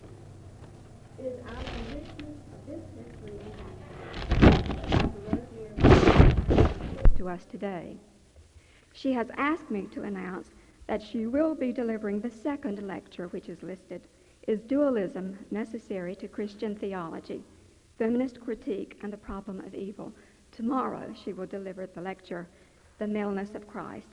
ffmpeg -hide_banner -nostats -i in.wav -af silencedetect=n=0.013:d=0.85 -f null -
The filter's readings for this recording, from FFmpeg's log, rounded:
silence_start: 7.96
silence_end: 8.98 | silence_duration: 1.02